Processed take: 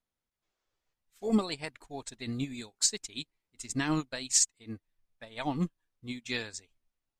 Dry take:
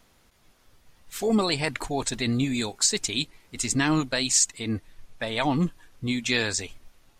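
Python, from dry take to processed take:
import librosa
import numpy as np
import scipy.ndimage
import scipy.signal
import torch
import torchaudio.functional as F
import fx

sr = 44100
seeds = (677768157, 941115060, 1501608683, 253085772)

y = fx.spec_box(x, sr, start_s=0.42, length_s=0.51, low_hz=310.0, high_hz=8100.0, gain_db=8)
y = fx.upward_expand(y, sr, threshold_db=-37.0, expansion=2.5)
y = y * librosa.db_to_amplitude(-2.0)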